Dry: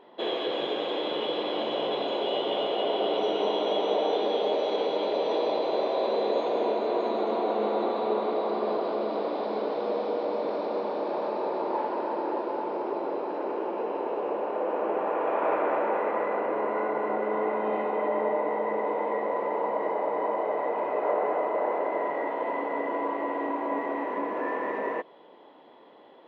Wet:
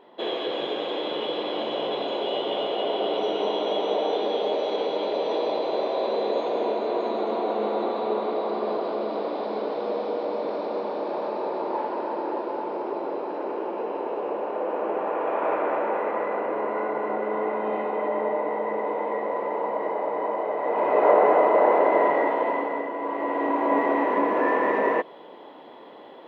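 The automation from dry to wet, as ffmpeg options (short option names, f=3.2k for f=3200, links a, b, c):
-af "volume=19dB,afade=t=in:st=20.6:d=0.44:silence=0.398107,afade=t=out:st=22.05:d=0.89:silence=0.281838,afade=t=in:st=22.94:d=0.85:silence=0.316228"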